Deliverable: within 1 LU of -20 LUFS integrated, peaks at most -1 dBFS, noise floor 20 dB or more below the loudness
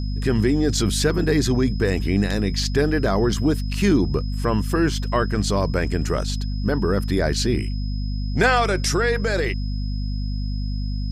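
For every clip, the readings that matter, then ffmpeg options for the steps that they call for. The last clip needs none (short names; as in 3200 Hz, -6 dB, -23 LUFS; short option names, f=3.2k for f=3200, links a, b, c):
hum 50 Hz; harmonics up to 250 Hz; hum level -22 dBFS; steady tone 5100 Hz; tone level -41 dBFS; loudness -22.0 LUFS; peak -5.5 dBFS; loudness target -20.0 LUFS
-> -af "bandreject=f=50:t=h:w=4,bandreject=f=100:t=h:w=4,bandreject=f=150:t=h:w=4,bandreject=f=200:t=h:w=4,bandreject=f=250:t=h:w=4"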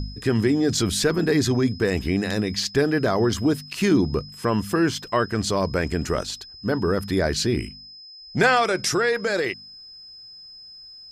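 hum none; steady tone 5100 Hz; tone level -41 dBFS
-> -af "bandreject=f=5.1k:w=30"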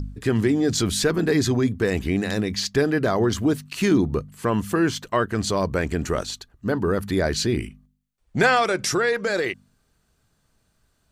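steady tone none; loudness -23.0 LUFS; peak -6.5 dBFS; loudness target -20.0 LUFS
-> -af "volume=3dB"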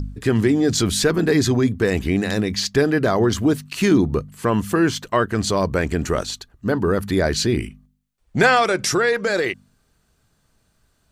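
loudness -20.0 LUFS; peak -3.5 dBFS; noise floor -65 dBFS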